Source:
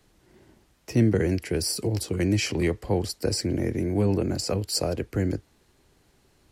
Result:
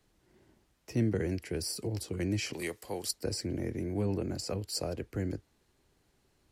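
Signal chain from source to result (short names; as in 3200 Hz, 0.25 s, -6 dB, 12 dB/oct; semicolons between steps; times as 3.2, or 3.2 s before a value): 2.53–3.11 RIAA curve recording; gain -8.5 dB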